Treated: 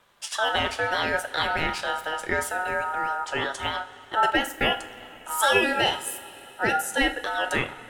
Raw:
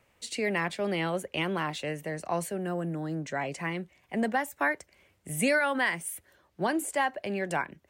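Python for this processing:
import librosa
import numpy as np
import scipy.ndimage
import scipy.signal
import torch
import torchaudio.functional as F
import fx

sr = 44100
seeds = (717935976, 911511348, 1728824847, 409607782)

y = fx.notch_comb(x, sr, f0_hz=1100.0, at=(5.6, 7.01))
y = fx.rev_double_slope(y, sr, seeds[0], early_s=0.33, late_s=3.8, knee_db=-18, drr_db=6.5)
y = y * np.sin(2.0 * np.pi * 1100.0 * np.arange(len(y)) / sr)
y = y * librosa.db_to_amplitude(7.0)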